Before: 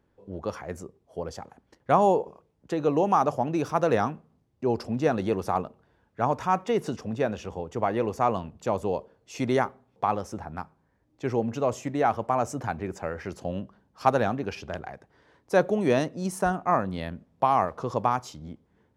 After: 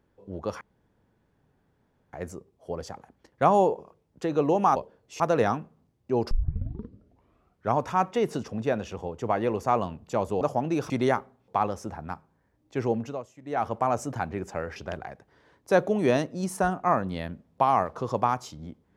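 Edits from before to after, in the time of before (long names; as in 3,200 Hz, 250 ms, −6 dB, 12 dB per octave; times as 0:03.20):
0:00.61: splice in room tone 1.52 s
0:03.24–0:03.73: swap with 0:08.94–0:09.38
0:04.84: tape start 1.46 s
0:11.42–0:12.20: duck −18 dB, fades 0.31 s
0:13.24–0:14.58: remove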